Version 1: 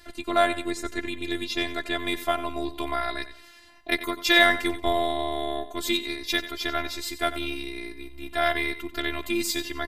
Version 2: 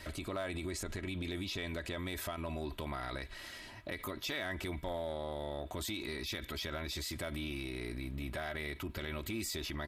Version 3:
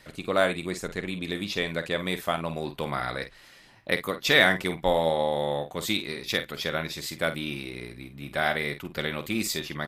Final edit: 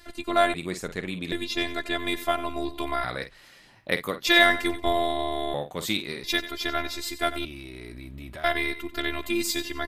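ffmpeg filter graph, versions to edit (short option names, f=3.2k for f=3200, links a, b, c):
-filter_complex "[2:a]asplit=3[a][b][c];[0:a]asplit=5[d][e][f][g][h];[d]atrim=end=0.542[i];[a]atrim=start=0.538:end=1.322[j];[e]atrim=start=1.318:end=3.042[k];[b]atrim=start=3.038:end=4.272[l];[f]atrim=start=4.268:end=5.542[m];[c]atrim=start=5.538:end=6.242[n];[g]atrim=start=6.238:end=7.452[o];[1:a]atrim=start=7.448:end=8.442[p];[h]atrim=start=8.438[q];[i][j]acrossfade=d=0.004:c1=hsin:c2=hsin[r];[r][k]acrossfade=d=0.004:c1=hsin:c2=hsin[s];[s][l]acrossfade=d=0.004:c1=hsin:c2=hsin[t];[t][m]acrossfade=d=0.004:c1=hsin:c2=hsin[u];[u][n]acrossfade=d=0.004:c1=hsin:c2=hsin[v];[v][o]acrossfade=d=0.004:c1=hsin:c2=hsin[w];[w][p]acrossfade=d=0.004:c1=hsin:c2=hsin[x];[x][q]acrossfade=d=0.004:c1=hsin:c2=hsin"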